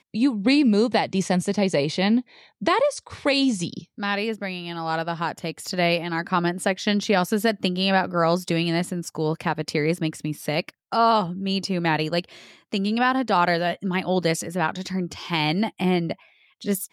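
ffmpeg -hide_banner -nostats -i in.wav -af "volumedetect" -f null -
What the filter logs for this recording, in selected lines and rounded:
mean_volume: -23.6 dB
max_volume: -8.1 dB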